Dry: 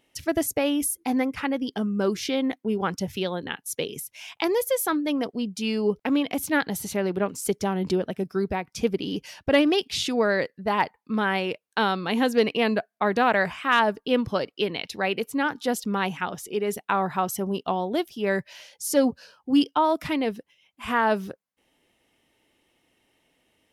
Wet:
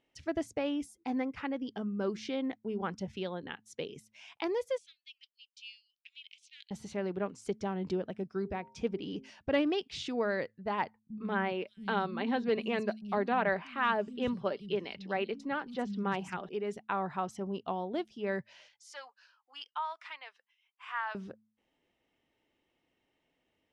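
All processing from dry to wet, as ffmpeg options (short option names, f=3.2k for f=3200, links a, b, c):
-filter_complex "[0:a]asettb=1/sr,asplit=3[a][b][c];[a]atrim=end=4.784[d];[b]atrim=start=4.78:end=6.71,asetpts=PTS-STARTPTS,afade=t=in:d=0.004:c=qsin,afade=t=out:st=1.926:d=0.004:c=qsin,highshelf=f=6.1k:g=-6,adynamicsmooth=sensitivity=2:basefreq=7.8k,asuperpass=centerf=5500:order=12:qfactor=0.69[e];[c]atrim=start=6.706[f];[d][e]acrossfade=d=0.004:c1=hsin:c2=qsin[g];[g][f]acrossfade=d=0.004:c1=qsin:c2=hsin,asettb=1/sr,asplit=3[h][i][j];[h]atrim=end=8.424[k];[i]atrim=start=8.42:end=9.3,asetpts=PTS-STARTPTS,afade=t=in:d=0.004:c=qsin,afade=t=out:st=0.876:d=0.004:c=qsin,bandreject=f=4.5k:w=21,bandreject=f=132.6:t=h:w=4,bandreject=f=265.2:t=h:w=4,bandreject=f=397.8:t=h:w=4,bandreject=f=530.4:t=h:w=4,bandreject=f=663:t=h:w=4,bandreject=f=795.6:t=h:w=4,bandreject=f=928.2:t=h:w=4[l];[j]atrim=start=9.296[m];[k][l]acrossfade=d=0.004:c1=hsin:c2=qsin[n];[n][m]acrossfade=d=0.004:c1=qsin:c2=hsin,asettb=1/sr,asplit=3[o][p][q];[o]atrim=end=10.994[r];[p]atrim=start=10.99:end=16.49,asetpts=PTS-STARTPTS,afade=t=in:d=0.004:c=qsin,afade=t=out:st=5.496:d=0.004:c=qsin,lowshelf=f=240:g=4.5,aecho=1:1:5.1:0.36,atrim=end_sample=242550,acrossover=split=190|5000[s][t][u];[t]adelay=110[v];[u]adelay=500[w];[s][v][w]amix=inputs=3:normalize=0,atrim=end_sample=242550[x];[q]atrim=start=16.486[y];[r][x]acrossfade=d=0.004:c1=hsin:c2=qsin[z];[z][y]acrossfade=d=0.004:c1=qsin:c2=hsin,asettb=1/sr,asplit=3[aa][ab][ac];[aa]atrim=end=18.684[ad];[ab]atrim=start=18.68:end=21.15,asetpts=PTS-STARTPTS,afade=t=in:d=0.004:c=qsin,afade=t=out:st=2.466:d=0.004:c=qsin,highpass=f=1k:w=0.5412,highpass=f=1k:w=1.3066,equalizer=f=11k:t=o:w=1.8:g=-6[ae];[ac]atrim=start=21.146[af];[ad][ae]acrossfade=d=0.004:c1=hsin:c2=qsin[ag];[ag][af]acrossfade=d=0.004:c1=qsin:c2=hsin,lowpass=f=8k:w=0.5412,lowpass=f=8k:w=1.3066,highshelf=f=4.6k:g=-10,bandreject=f=108.7:t=h:w=4,bandreject=f=217.4:t=h:w=4,volume=-9dB"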